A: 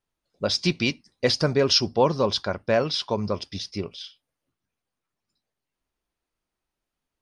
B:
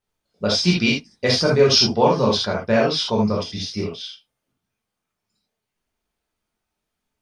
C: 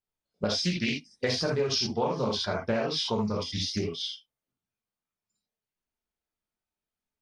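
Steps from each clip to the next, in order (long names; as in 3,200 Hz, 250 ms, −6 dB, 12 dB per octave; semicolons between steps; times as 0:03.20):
reverb whose tail is shaped and stops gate 100 ms flat, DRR −3.5 dB
noise reduction from a noise print of the clip's start 13 dB; downward compressor 5 to 1, threshold −26 dBFS, peak gain reduction 15 dB; highs frequency-modulated by the lows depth 0.23 ms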